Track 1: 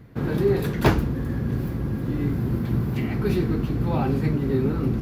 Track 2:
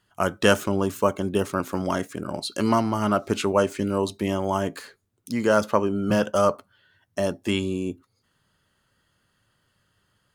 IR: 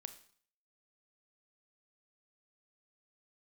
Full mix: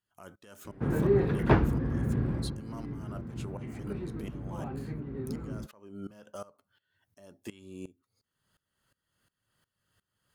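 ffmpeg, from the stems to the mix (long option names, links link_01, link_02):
-filter_complex "[0:a]lowpass=2100,adelay=650,volume=-3.5dB,afade=type=out:start_time=2.36:duration=0.22:silence=0.266073[link_01];[1:a]acompressor=threshold=-45dB:ratio=1.5,alimiter=level_in=1.5dB:limit=-24dB:level=0:latency=1:release=111,volume=-1.5dB,aeval=exprs='val(0)*pow(10,-20*if(lt(mod(-2.8*n/s,1),2*abs(-2.8)/1000),1-mod(-2.8*n/s,1)/(2*abs(-2.8)/1000),(mod(-2.8*n/s,1)-2*abs(-2.8)/1000)/(1-2*abs(-2.8)/1000))/20)':channel_layout=same,volume=-3dB[link_02];[link_01][link_02]amix=inputs=2:normalize=0,highshelf=frequency=9300:gain=9"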